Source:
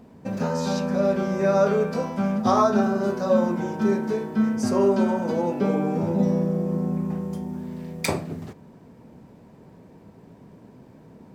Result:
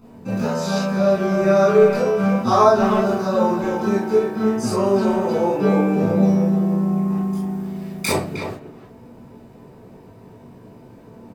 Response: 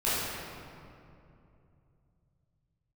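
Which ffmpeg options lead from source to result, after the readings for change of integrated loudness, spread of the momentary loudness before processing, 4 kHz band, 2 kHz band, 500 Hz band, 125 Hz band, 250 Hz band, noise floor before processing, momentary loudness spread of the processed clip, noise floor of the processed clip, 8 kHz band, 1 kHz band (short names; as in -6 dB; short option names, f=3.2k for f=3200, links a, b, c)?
+5.0 dB, 11 LU, +6.0 dB, +6.0 dB, +5.5 dB, +4.5 dB, +4.0 dB, -50 dBFS, 11 LU, -45 dBFS, +5.0 dB, +5.5 dB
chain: -filter_complex "[0:a]highshelf=f=9.8k:g=7,asplit=2[a][b];[b]adelay=310,highpass=300,lowpass=3.4k,asoftclip=type=hard:threshold=-16.5dB,volume=-7dB[c];[a][c]amix=inputs=2:normalize=0[d];[1:a]atrim=start_sample=2205,atrim=end_sample=3087[e];[d][e]afir=irnorm=-1:irlink=0,volume=-2.5dB"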